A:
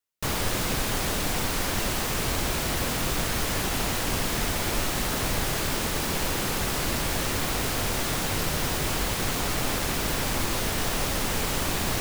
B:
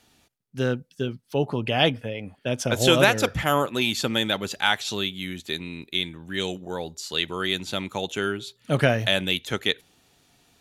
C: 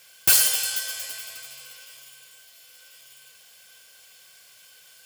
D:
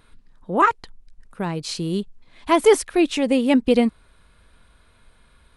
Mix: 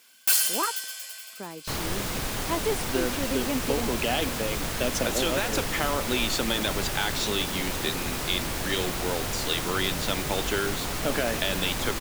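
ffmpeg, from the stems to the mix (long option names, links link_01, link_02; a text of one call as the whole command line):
ffmpeg -i stem1.wav -i stem2.wav -i stem3.wav -i stem4.wav -filter_complex "[0:a]adelay=1450,volume=-3.5dB[link_01];[1:a]alimiter=limit=-12dB:level=0:latency=1,adelay=2350,volume=1dB[link_02];[2:a]highpass=610,volume=-4.5dB[link_03];[3:a]volume=-11dB[link_04];[link_02][link_04]amix=inputs=2:normalize=0,highpass=frequency=210:width=0.5412,highpass=frequency=210:width=1.3066,acompressor=threshold=-23dB:ratio=6,volume=0dB[link_05];[link_01][link_03][link_05]amix=inputs=3:normalize=0" out.wav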